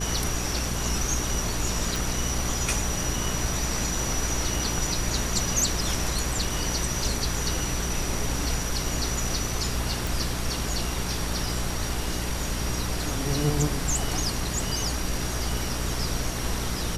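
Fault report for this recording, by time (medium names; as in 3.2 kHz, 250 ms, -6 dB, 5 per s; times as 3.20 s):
hum 60 Hz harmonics 7 -32 dBFS
1.96 s: pop
10.07 s: pop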